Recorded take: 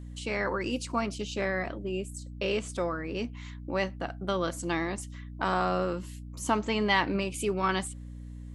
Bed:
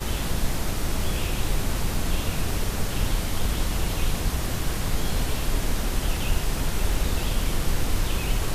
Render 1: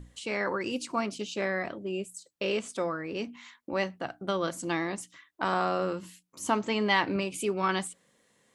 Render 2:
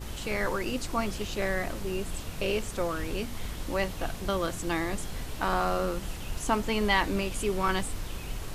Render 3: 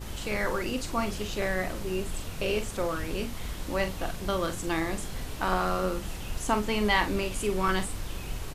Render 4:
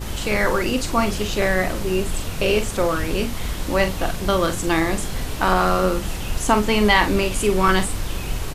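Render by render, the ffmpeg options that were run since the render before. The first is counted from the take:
-af "bandreject=f=60:t=h:w=6,bandreject=f=120:t=h:w=6,bandreject=f=180:t=h:w=6,bandreject=f=240:t=h:w=6,bandreject=f=300:t=h:w=6"
-filter_complex "[1:a]volume=-11.5dB[a];[0:a][a]amix=inputs=2:normalize=0"
-filter_complex "[0:a]asplit=2[a][b];[b]adelay=43,volume=-9dB[c];[a][c]amix=inputs=2:normalize=0"
-af "volume=9.5dB,alimiter=limit=-3dB:level=0:latency=1"

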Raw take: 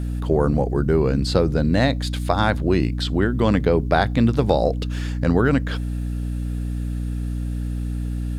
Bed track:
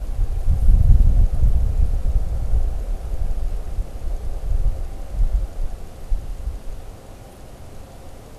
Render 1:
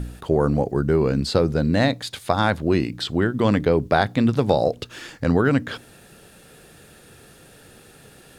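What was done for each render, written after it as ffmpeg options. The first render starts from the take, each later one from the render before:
-af "bandreject=f=60:t=h:w=4,bandreject=f=120:t=h:w=4,bandreject=f=180:t=h:w=4,bandreject=f=240:t=h:w=4,bandreject=f=300:t=h:w=4"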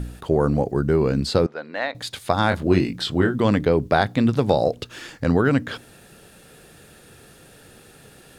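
-filter_complex "[0:a]asettb=1/sr,asplit=3[a][b][c];[a]atrim=end=1.464[d];[b]atrim=start=1.46:end=1.95,asetpts=PTS-STARTPTS,afade=t=in:d=0.004:c=qsin,afade=t=out:st=0.486:d=0.004:c=qsin,highpass=770,lowpass=2.5k[e];[c]atrim=start=1.946[f];[d][e]acrossfade=d=0.004:c1=hsin:c2=qsin[g];[g][f]acrossfade=d=0.004:c1=qsin:c2=hsin,asettb=1/sr,asplit=3[h][i][j];[h]atrim=end=2.494[k];[i]atrim=start=2.49:end=3.36,asetpts=PTS-STARTPTS,afade=t=in:d=0.004:c=qsin,afade=t=out:st=0.866:d=0.004:c=qsin,asplit=2[l][m];[m]adelay=22,volume=-4.5dB[n];[l][n]amix=inputs=2:normalize=0,atrim=end_sample=38367[o];[j]atrim=start=3.356[p];[k][o]acrossfade=d=0.004:c1=hsin:c2=qsin[q];[q][p]acrossfade=d=0.004:c1=qsin:c2=hsin"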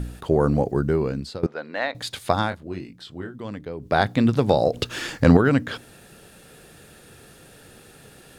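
-filter_complex "[0:a]asettb=1/sr,asplit=3[a][b][c];[a]atrim=end=4.744[d];[b]atrim=start=4.74:end=5.37,asetpts=PTS-STARTPTS,afade=t=in:d=0.004:c=qsin,afade=t=out:st=0.626:d=0.004:c=qsin,acontrast=84[e];[c]atrim=start=5.366[f];[d][e]acrossfade=d=0.004:c1=hsin:c2=qsin[g];[g][f]acrossfade=d=0.004:c1=qsin:c2=hsin,asplit=4[h][i][j][k];[h]atrim=end=1.43,asetpts=PTS-STARTPTS,afade=t=out:st=0.74:d=0.69:silence=0.105925[l];[i]atrim=start=1.43:end=2.56,asetpts=PTS-STARTPTS,afade=t=in:d=0.004:c=hsin:silence=0.105925,afade=t=out:st=0.91:d=0.22:silence=0.177828[m];[j]atrim=start=2.56:end=3.79,asetpts=PTS-STARTPTS,volume=-15dB[n];[k]atrim=start=3.79,asetpts=PTS-STARTPTS,afade=t=in:d=0.22:silence=0.177828[o];[l][m][n][o]concat=n=4:v=0:a=1"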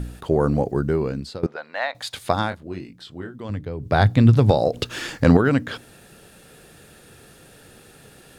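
-filter_complex "[0:a]asettb=1/sr,asplit=3[a][b][c];[a]atrim=end=1.564[d];[b]atrim=start=1.56:end=2.14,asetpts=PTS-STARTPTS,afade=t=in:d=0.004:c=qsin,afade=t=out:st=0.576:d=0.004:c=qsin,lowshelf=f=510:t=q:w=1.5:g=-10[e];[c]atrim=start=2.136[f];[d][e]acrossfade=d=0.004:c1=hsin:c2=qsin[g];[g][f]acrossfade=d=0.004:c1=qsin:c2=hsin,asettb=1/sr,asplit=3[h][i][j];[h]atrim=end=3.494[k];[i]atrim=start=3.49:end=4.51,asetpts=PTS-STARTPTS,afade=t=in:d=0.004:c=qsin,afade=t=out:st=1.016:d=0.004:c=qsin,equalizer=f=100:w=1.5:g=14[l];[j]atrim=start=4.506[m];[k][l]acrossfade=d=0.004:c1=hsin:c2=qsin[n];[n][m]acrossfade=d=0.004:c1=qsin:c2=hsin"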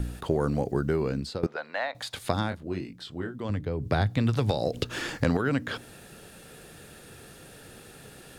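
-filter_complex "[0:a]acrossover=split=450|1600[a][b][c];[a]acompressor=threshold=-25dB:ratio=4[d];[b]acompressor=threshold=-32dB:ratio=4[e];[c]acompressor=threshold=-35dB:ratio=4[f];[d][e][f]amix=inputs=3:normalize=0"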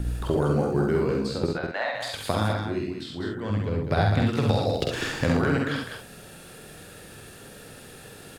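-filter_complex "[0:a]asplit=2[a][b];[b]adelay=48,volume=-4.5dB[c];[a][c]amix=inputs=2:normalize=0,aecho=1:1:67.06|201.2:0.631|0.501"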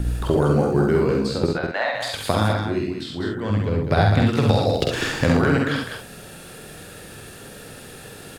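-af "volume=5dB"

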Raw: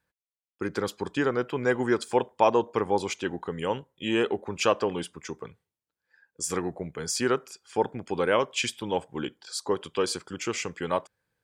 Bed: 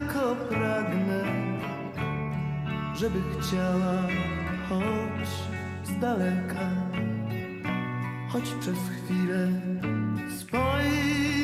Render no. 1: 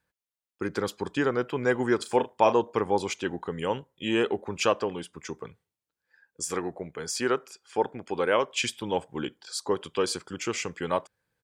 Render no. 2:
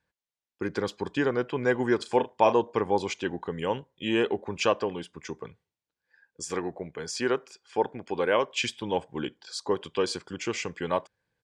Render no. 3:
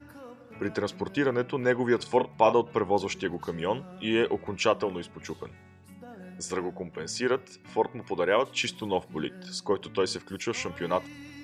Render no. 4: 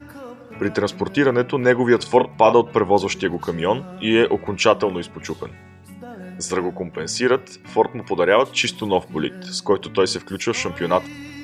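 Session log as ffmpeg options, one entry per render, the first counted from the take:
-filter_complex "[0:a]asplit=3[a][b][c];[a]afade=t=out:st=1.99:d=0.02[d];[b]asplit=2[e][f];[f]adelay=37,volume=-10dB[g];[e][g]amix=inputs=2:normalize=0,afade=t=in:st=1.99:d=0.02,afade=t=out:st=2.52:d=0.02[h];[c]afade=t=in:st=2.52:d=0.02[i];[d][h][i]amix=inputs=3:normalize=0,asettb=1/sr,asplit=3[j][k][l];[j]atrim=end=6.444[m];[k]atrim=start=6.44:end=8.57,asetpts=PTS-STARTPTS,afade=t=in:d=0.004:c=qsin,afade=t=out:st=2.126:d=0.004:c=qsin,bass=f=250:g=-6,treble=f=4k:g=-3[n];[l]atrim=start=8.566[o];[m][n]acrossfade=d=0.004:c1=hsin:c2=qsin[p];[p][o]acrossfade=d=0.004:c1=qsin:c2=hsin,asplit=2[q][r];[q]atrim=end=5.13,asetpts=PTS-STARTPTS,afade=t=out:st=4.6:d=0.53:silence=0.501187[s];[r]atrim=start=5.13,asetpts=PTS-STARTPTS,afade=t=in:d=0.004:c=hsin:silence=0.501187[t];[s][t]concat=n=2:v=0:a=1"
-af "lowpass=6.3k,bandreject=f=1.3k:w=9.6"
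-filter_complex "[1:a]volume=-19dB[a];[0:a][a]amix=inputs=2:normalize=0"
-af "volume=9dB,alimiter=limit=-1dB:level=0:latency=1"

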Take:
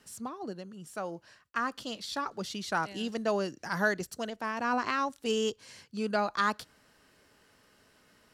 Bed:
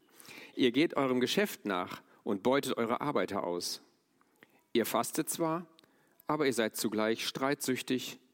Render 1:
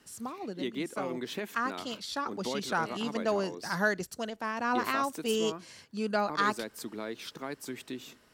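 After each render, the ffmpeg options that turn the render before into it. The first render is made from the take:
-filter_complex "[1:a]volume=-7.5dB[a];[0:a][a]amix=inputs=2:normalize=0"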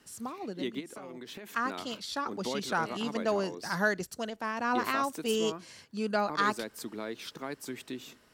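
-filter_complex "[0:a]asplit=3[a][b][c];[a]afade=t=out:st=0.79:d=0.02[d];[b]acompressor=threshold=-40dB:ratio=8:attack=3.2:release=140:knee=1:detection=peak,afade=t=in:st=0.79:d=0.02,afade=t=out:st=1.45:d=0.02[e];[c]afade=t=in:st=1.45:d=0.02[f];[d][e][f]amix=inputs=3:normalize=0"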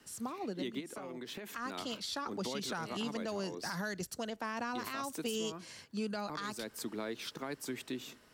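-filter_complex "[0:a]acrossover=split=180|3000[a][b][c];[b]acompressor=threshold=-34dB:ratio=6[d];[a][d][c]amix=inputs=3:normalize=0,alimiter=level_in=4dB:limit=-24dB:level=0:latency=1:release=91,volume=-4dB"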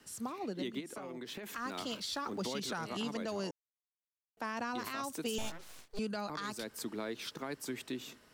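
-filter_complex "[0:a]asettb=1/sr,asplit=3[a][b][c];[a]atrim=end=1.434[d];[b]atrim=start=1.43:end=2.6,asetpts=PTS-STARTPTS,afade=t=in:d=0.004:c=qsin,afade=t=out:st=1.166:d=0.004:c=qsin,aeval=exprs='val(0)+0.5*0.00168*sgn(val(0))':c=same[e];[c]atrim=start=2.596[f];[d][e]acrossfade=d=0.004:c1=hsin:c2=qsin[g];[g][f]acrossfade=d=0.004:c1=qsin:c2=hsin,asettb=1/sr,asplit=3[h][i][j];[h]atrim=end=5.384[k];[i]atrim=start=5.38:end=5.99,asetpts=PTS-STARTPTS,afade=t=in:d=0.004:c=qsin,afade=t=out:st=0.606:d=0.004:c=qsin,aeval=exprs='abs(val(0))':c=same[l];[j]atrim=start=5.986[m];[k][l]acrossfade=d=0.004:c1=hsin:c2=qsin[n];[n][m]acrossfade=d=0.004:c1=qsin:c2=hsin,asplit=3[o][p][q];[o]atrim=end=3.51,asetpts=PTS-STARTPTS,afade=t=out:st=3.506:d=0.004:c=hsin[r];[p]atrim=start=3.51:end=4.37,asetpts=PTS-STARTPTS,volume=0[s];[q]atrim=start=4.37,asetpts=PTS-STARTPTS,afade=t=in:d=0.004:c=hsin[t];[r][s][t]concat=n=3:v=0:a=1"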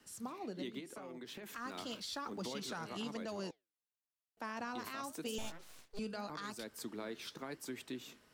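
-af "flanger=delay=3.4:depth=9.4:regen=-81:speed=0.91:shape=sinusoidal"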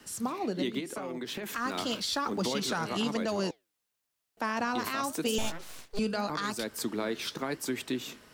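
-af "volume=11.5dB"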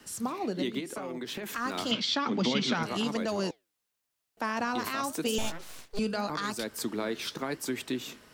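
-filter_complex "[0:a]asettb=1/sr,asplit=3[a][b][c];[a]atrim=end=1.914[d];[b]atrim=start=1.91:end=2.83,asetpts=PTS-STARTPTS,afade=t=in:d=0.004:c=qsin,afade=t=out:st=0.916:d=0.004:c=qsin,highpass=110,equalizer=f=140:t=q:w=4:g=9,equalizer=f=240:t=q:w=4:g=9,equalizer=f=2.2k:t=q:w=4:g=8,equalizer=f=3.2k:t=q:w=4:g=8,lowpass=f=6.1k:w=0.5412,lowpass=f=6.1k:w=1.3066[e];[c]atrim=start=2.826[f];[d][e]acrossfade=d=0.004:c1=hsin:c2=qsin[g];[g][f]acrossfade=d=0.004:c1=qsin:c2=hsin"

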